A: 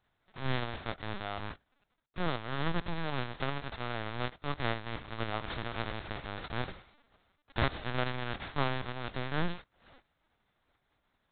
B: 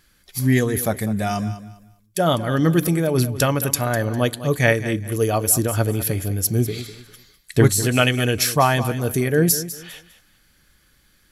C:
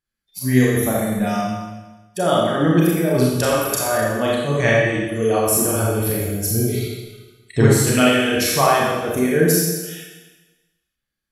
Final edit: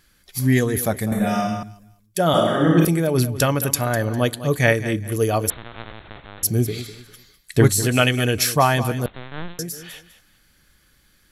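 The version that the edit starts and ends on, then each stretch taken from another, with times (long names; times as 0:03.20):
B
0:01.12–0:01.63: punch in from C
0:02.34–0:02.85: punch in from C
0:05.50–0:06.43: punch in from A
0:09.06–0:09.59: punch in from A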